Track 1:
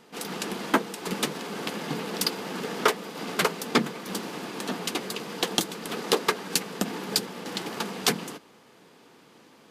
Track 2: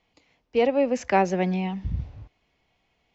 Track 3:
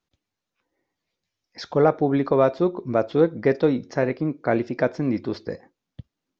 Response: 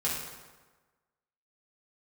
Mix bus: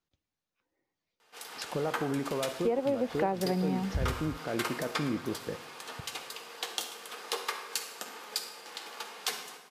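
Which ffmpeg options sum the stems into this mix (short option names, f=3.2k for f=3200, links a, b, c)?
-filter_complex "[0:a]highpass=690,adelay=1200,volume=-11.5dB,asplit=2[a][b];[b]volume=-7dB[c];[1:a]lowpass=1.4k,adelay=2100,volume=0dB[d];[2:a]alimiter=limit=-16.5dB:level=0:latency=1,volume=-7dB,asplit=2[e][f];[f]volume=-21dB[g];[3:a]atrim=start_sample=2205[h];[c][g]amix=inputs=2:normalize=0[i];[i][h]afir=irnorm=-1:irlink=0[j];[a][d][e][j]amix=inputs=4:normalize=0,acompressor=threshold=-25dB:ratio=10"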